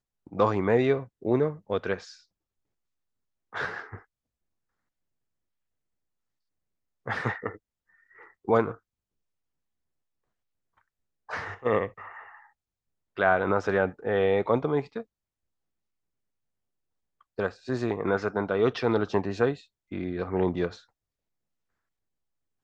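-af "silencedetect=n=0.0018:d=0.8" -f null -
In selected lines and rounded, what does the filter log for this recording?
silence_start: 2.23
silence_end: 3.53 | silence_duration: 1.29
silence_start: 4.04
silence_end: 7.06 | silence_duration: 3.01
silence_start: 8.78
silence_end: 10.78 | silence_duration: 2.00
silence_start: 15.04
silence_end: 17.21 | silence_duration: 2.17
silence_start: 20.85
silence_end: 22.64 | silence_duration: 1.79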